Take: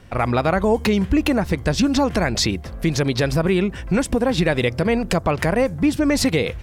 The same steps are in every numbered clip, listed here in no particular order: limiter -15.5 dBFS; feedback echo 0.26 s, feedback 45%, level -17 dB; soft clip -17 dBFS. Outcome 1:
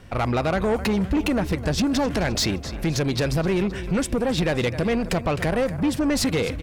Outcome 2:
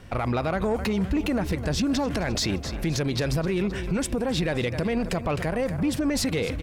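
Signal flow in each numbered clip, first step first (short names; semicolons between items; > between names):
feedback echo > soft clip > limiter; feedback echo > limiter > soft clip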